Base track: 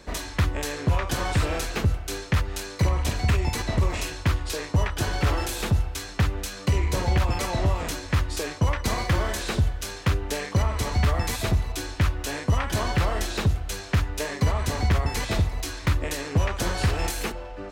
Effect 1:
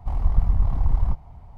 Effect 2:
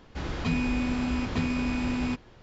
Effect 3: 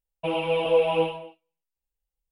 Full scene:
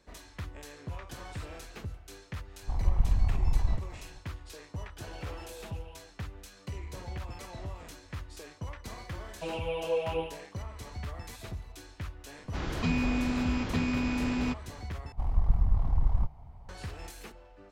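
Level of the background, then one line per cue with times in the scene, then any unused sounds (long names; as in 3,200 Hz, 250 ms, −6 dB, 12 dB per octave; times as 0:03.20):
base track −17 dB
0:02.62: mix in 1 −6 dB
0:04.80: mix in 3 −16 dB + downward compressor, threshold −30 dBFS
0:09.18: mix in 3 −9.5 dB
0:12.38: mix in 2 −1.5 dB
0:15.12: overwrite with 1 −5.5 dB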